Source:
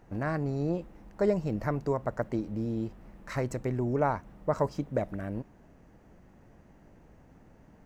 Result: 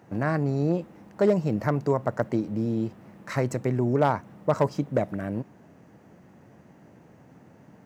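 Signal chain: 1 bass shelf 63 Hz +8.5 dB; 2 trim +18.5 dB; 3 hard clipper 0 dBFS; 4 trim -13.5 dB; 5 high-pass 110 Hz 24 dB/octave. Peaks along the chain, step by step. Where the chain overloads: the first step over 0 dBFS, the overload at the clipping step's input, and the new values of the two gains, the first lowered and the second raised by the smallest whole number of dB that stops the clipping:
-14.5 dBFS, +4.0 dBFS, 0.0 dBFS, -13.5 dBFS, -8.0 dBFS; step 2, 4.0 dB; step 2 +14.5 dB, step 4 -9.5 dB

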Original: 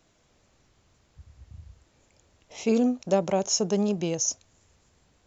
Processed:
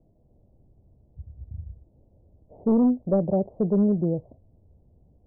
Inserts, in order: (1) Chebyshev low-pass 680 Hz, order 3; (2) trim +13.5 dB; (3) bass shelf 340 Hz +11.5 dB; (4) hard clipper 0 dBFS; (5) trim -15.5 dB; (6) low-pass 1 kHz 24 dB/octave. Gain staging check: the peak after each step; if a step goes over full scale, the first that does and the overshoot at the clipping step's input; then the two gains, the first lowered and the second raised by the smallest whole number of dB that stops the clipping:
-12.5 dBFS, +1.0 dBFS, +5.5 dBFS, 0.0 dBFS, -15.5 dBFS, -14.0 dBFS; step 2, 5.5 dB; step 2 +7.5 dB, step 5 -9.5 dB

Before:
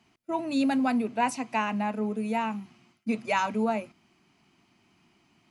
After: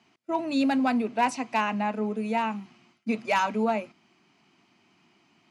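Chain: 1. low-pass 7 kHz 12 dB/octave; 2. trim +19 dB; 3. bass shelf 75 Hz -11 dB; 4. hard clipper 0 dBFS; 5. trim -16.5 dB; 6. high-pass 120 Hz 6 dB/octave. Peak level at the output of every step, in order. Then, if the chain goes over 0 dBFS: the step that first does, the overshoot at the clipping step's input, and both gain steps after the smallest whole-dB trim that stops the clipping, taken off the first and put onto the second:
-13.5 dBFS, +5.5 dBFS, +5.5 dBFS, 0.0 dBFS, -16.5 dBFS, -15.0 dBFS; step 2, 5.5 dB; step 2 +13 dB, step 5 -10.5 dB

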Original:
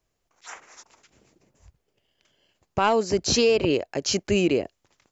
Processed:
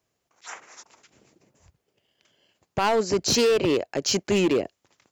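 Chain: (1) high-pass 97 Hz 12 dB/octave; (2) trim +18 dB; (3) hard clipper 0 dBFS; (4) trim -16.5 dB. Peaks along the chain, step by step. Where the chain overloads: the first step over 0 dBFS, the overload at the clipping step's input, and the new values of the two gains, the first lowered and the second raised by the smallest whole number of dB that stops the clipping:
-9.0 dBFS, +9.0 dBFS, 0.0 dBFS, -16.5 dBFS; step 2, 9.0 dB; step 2 +9 dB, step 4 -7.5 dB

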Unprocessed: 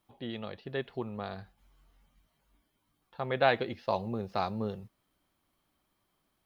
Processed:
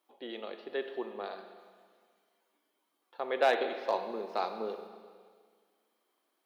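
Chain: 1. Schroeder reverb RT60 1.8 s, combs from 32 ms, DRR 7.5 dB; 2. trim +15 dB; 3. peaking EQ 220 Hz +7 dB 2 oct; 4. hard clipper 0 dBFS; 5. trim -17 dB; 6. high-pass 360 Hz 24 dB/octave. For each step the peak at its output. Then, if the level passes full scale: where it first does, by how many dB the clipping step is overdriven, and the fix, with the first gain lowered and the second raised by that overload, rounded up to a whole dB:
-10.5 dBFS, +4.5 dBFS, +5.5 dBFS, 0.0 dBFS, -17.0 dBFS, -13.0 dBFS; step 2, 5.5 dB; step 2 +9 dB, step 5 -11 dB

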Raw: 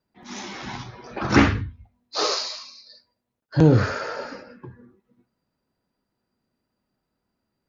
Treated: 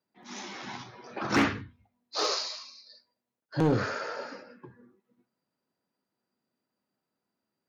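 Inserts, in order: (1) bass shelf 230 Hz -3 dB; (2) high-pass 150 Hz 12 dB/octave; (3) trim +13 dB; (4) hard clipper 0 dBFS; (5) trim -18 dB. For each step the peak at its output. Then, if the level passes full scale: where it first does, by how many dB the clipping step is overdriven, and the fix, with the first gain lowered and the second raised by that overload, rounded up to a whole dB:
-4.5 dBFS, -3.5 dBFS, +9.5 dBFS, 0.0 dBFS, -18.0 dBFS; step 3, 9.5 dB; step 3 +3 dB, step 5 -8 dB

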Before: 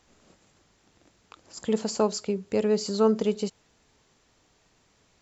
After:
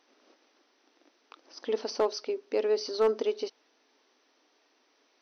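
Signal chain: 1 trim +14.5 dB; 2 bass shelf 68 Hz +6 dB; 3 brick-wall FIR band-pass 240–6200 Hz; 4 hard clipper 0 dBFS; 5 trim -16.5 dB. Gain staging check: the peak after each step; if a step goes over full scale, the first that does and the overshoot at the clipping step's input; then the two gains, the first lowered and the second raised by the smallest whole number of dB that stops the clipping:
+4.0 dBFS, +4.0 dBFS, +3.5 dBFS, 0.0 dBFS, -16.5 dBFS; step 1, 3.5 dB; step 1 +10.5 dB, step 5 -12.5 dB

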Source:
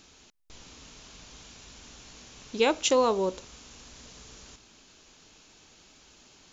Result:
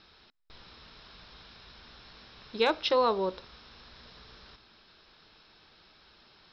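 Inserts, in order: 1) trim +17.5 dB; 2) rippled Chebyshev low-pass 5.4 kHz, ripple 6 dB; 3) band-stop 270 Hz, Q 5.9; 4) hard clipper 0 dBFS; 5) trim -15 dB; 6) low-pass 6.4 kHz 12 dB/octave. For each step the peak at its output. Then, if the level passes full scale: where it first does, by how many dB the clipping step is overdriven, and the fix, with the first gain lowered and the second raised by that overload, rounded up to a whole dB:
+5.5 dBFS, +3.0 dBFS, +3.0 dBFS, 0.0 dBFS, -15.0 dBFS, -14.5 dBFS; step 1, 3.0 dB; step 1 +14.5 dB, step 5 -12 dB

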